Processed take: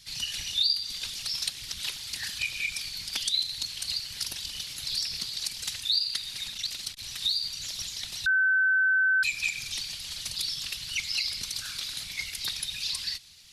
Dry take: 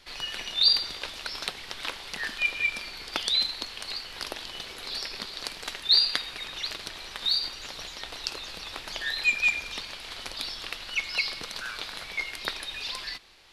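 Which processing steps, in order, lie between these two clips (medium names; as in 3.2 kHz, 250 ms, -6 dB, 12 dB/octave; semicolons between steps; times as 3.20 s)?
FFT filter 150 Hz 0 dB, 400 Hz -16 dB, 1.2 kHz -12 dB, 6.3 kHz +10 dB; compression 3:1, threshold -26 dBFS, peak gain reduction 12 dB; whisper effect; 6.52–7.03 s: transformer saturation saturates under 1.4 kHz; 8.26–9.23 s: bleep 1.53 kHz -20 dBFS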